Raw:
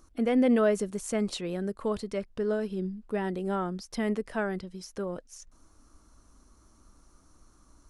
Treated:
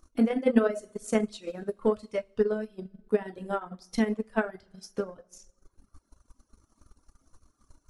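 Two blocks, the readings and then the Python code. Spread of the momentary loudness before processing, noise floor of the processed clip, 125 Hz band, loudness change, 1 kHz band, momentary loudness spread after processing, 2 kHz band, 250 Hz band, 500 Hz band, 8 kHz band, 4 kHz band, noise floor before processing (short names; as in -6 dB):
13 LU, -75 dBFS, -3.5 dB, +0.5 dB, -0.5 dB, 13 LU, +0.5 dB, 0.0 dB, +0.5 dB, -4.0 dB, -3.5 dB, -61 dBFS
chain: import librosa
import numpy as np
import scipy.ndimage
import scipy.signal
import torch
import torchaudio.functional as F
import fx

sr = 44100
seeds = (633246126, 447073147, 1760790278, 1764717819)

y = fx.rev_double_slope(x, sr, seeds[0], early_s=0.79, late_s=2.8, knee_db=-18, drr_db=1.5)
y = fx.dereverb_blind(y, sr, rt60_s=1.2)
y = fx.transient(y, sr, attack_db=10, sustain_db=-7)
y = y * librosa.db_to_amplitude(-5.0)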